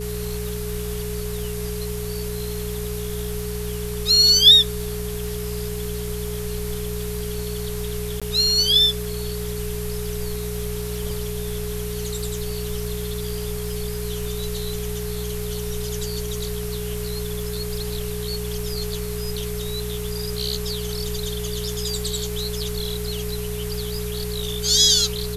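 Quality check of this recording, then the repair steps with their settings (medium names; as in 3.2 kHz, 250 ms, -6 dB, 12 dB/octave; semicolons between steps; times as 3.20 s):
crackle 21 per s -30 dBFS
hum 60 Hz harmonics 3 -30 dBFS
whine 420 Hz -30 dBFS
8.20–8.22 s: dropout 16 ms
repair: de-click; de-hum 60 Hz, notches 3; band-stop 420 Hz, Q 30; interpolate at 8.20 s, 16 ms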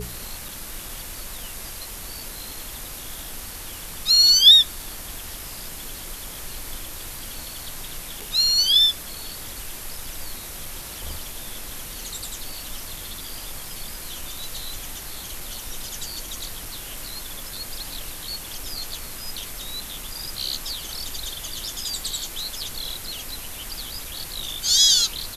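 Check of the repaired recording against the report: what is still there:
nothing left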